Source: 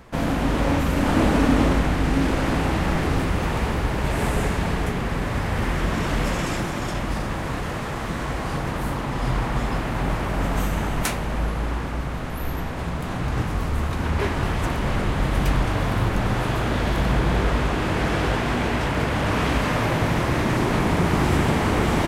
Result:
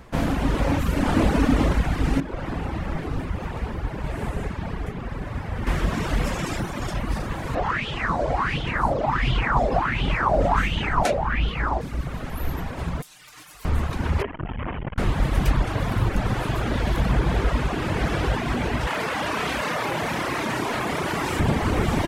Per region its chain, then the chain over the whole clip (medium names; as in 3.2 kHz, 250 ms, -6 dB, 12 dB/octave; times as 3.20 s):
2.20–5.67 s: treble shelf 3.5 kHz -8 dB + flange 1.1 Hz, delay 6 ms, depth 5.6 ms, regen -84%
7.55–11.81 s: distance through air 62 m + sweeping bell 1.4 Hz 570–3200 Hz +16 dB
13.02–13.65 s: pre-emphasis filter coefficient 0.97 + comb 6.6 ms, depth 80% + loudspeaker Doppler distortion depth 0.37 ms
14.22–14.98 s: Chebyshev low-pass 3.1 kHz, order 6 + transformer saturation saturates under 360 Hz
18.87–21.40 s: high-pass 520 Hz 6 dB/octave + doubling 32 ms -4.5 dB + level flattener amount 70%
whole clip: reverb removal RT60 1.1 s; bass shelf 120 Hz +4 dB